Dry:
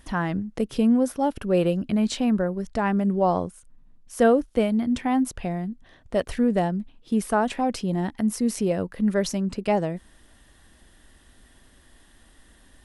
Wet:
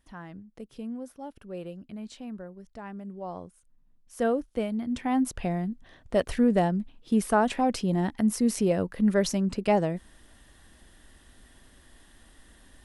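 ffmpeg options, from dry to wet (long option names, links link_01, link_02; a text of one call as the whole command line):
ffmpeg -i in.wav -af "volume=-0.5dB,afade=type=in:start_time=3.2:duration=1.14:silence=0.334965,afade=type=in:start_time=4.85:duration=0.55:silence=0.446684" out.wav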